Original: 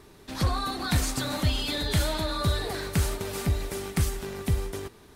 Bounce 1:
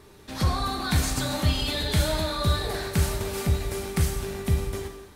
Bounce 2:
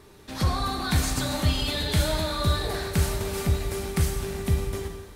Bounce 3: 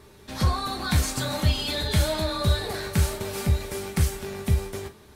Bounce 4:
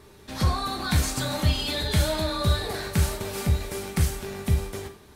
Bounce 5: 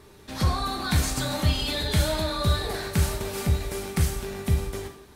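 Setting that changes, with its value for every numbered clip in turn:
gated-style reverb, gate: 350 ms, 520 ms, 80 ms, 140 ms, 210 ms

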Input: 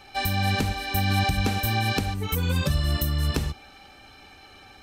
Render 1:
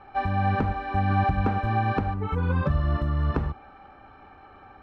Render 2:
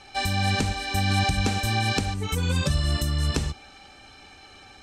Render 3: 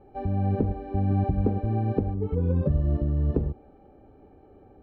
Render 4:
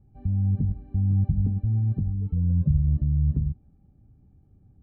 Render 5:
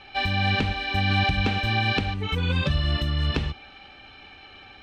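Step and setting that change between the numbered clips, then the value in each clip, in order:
resonant low-pass, frequency: 1.2 kHz, 7.9 kHz, 460 Hz, 150 Hz, 3.1 kHz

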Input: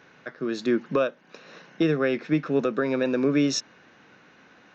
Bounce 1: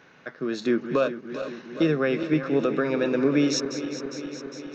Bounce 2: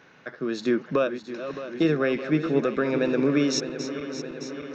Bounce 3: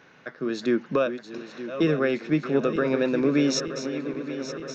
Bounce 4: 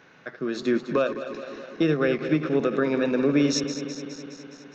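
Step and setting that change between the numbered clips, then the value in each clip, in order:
backward echo that repeats, time: 203 ms, 308 ms, 460 ms, 104 ms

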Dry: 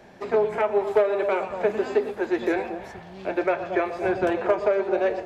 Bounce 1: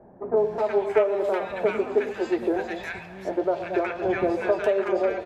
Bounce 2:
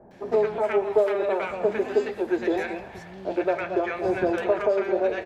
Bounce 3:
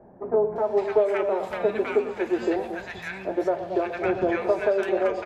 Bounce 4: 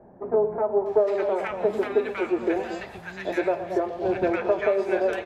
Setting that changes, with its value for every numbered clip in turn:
bands offset in time, time: 370 ms, 110 ms, 560 ms, 860 ms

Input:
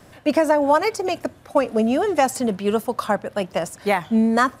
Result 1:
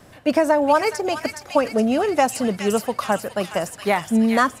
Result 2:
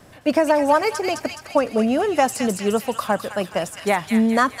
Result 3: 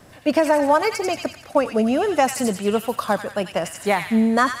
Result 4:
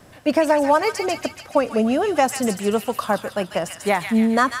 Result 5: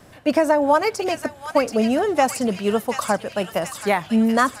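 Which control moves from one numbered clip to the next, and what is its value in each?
feedback echo behind a high-pass, time: 418 ms, 210 ms, 91 ms, 143 ms, 731 ms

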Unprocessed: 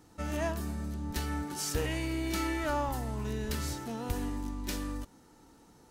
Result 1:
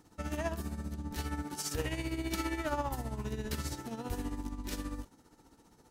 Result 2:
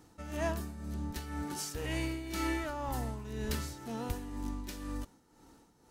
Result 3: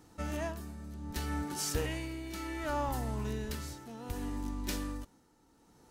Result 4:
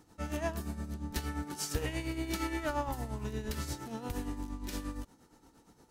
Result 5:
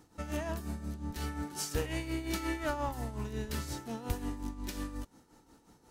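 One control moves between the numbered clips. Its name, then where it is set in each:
tremolo, rate: 15 Hz, 2 Hz, 0.65 Hz, 8.6 Hz, 5.6 Hz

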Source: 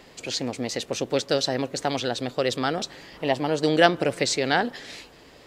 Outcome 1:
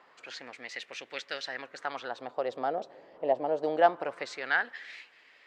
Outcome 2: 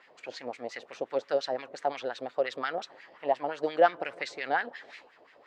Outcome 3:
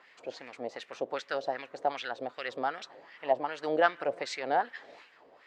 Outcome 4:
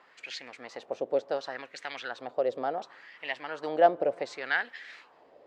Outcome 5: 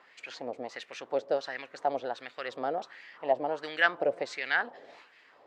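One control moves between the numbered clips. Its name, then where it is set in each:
wah-wah, rate: 0.24 Hz, 5.7 Hz, 2.6 Hz, 0.69 Hz, 1.4 Hz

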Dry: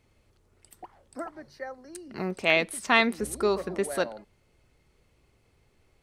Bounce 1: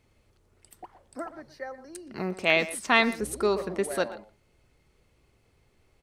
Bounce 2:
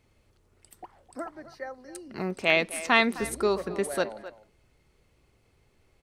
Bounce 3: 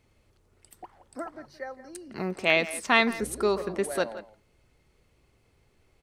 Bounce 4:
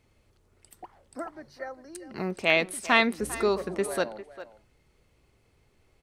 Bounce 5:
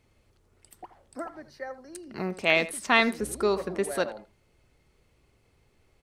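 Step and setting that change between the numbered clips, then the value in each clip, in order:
speakerphone echo, time: 120 ms, 260 ms, 170 ms, 400 ms, 80 ms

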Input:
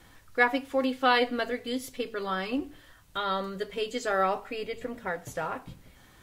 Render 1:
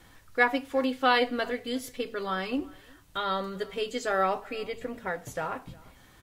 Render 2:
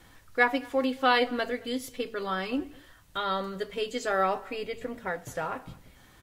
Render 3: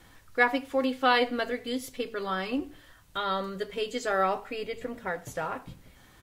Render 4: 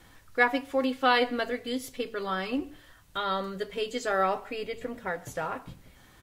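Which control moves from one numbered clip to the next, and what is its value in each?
speakerphone echo, time: 360 ms, 220 ms, 80 ms, 140 ms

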